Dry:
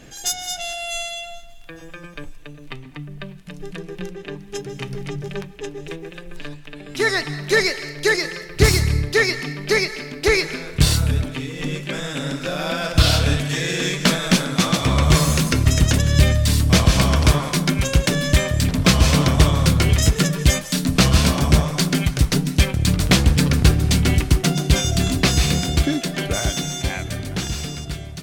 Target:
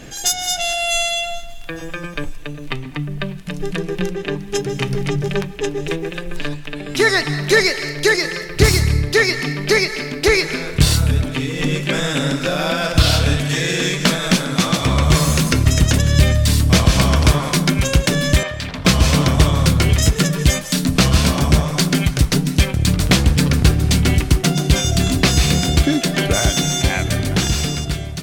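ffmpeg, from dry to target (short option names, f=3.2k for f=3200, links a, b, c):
-filter_complex "[0:a]asplit=2[a][b];[b]acompressor=threshold=-23dB:ratio=6,volume=2dB[c];[a][c]amix=inputs=2:normalize=0,asettb=1/sr,asplit=3[d][e][f];[d]atrim=end=18.434[g];[e]atrim=start=18.43:end=18.85,asetpts=PTS-STARTPTS,afade=t=in:d=0.004:c=qsin,afade=t=out:st=0.416:d=0.004:c=qsin,acrossover=split=570 4800:gain=0.251 1 0.126[h][i][j];[h][i][j]amix=inputs=3:normalize=0[k];[f]atrim=start=18.846[l];[g][k]acrossfade=d=0.004:c1=hsin:c2=qsin[m];[m][l]acrossfade=d=0.004:c1=qsin:c2=hsin,dynaudnorm=f=170:g=9:m=3dB"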